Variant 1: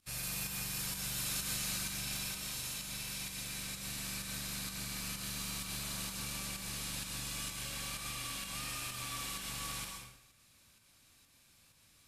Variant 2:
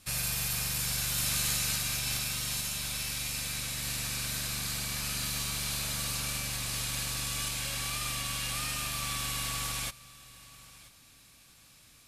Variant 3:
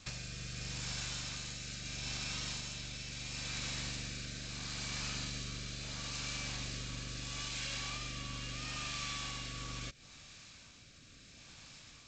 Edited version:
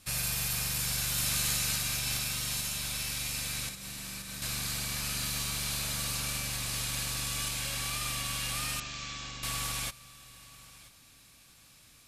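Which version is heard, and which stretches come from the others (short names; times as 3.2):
2
3.69–4.42 from 1
8.8–9.43 from 3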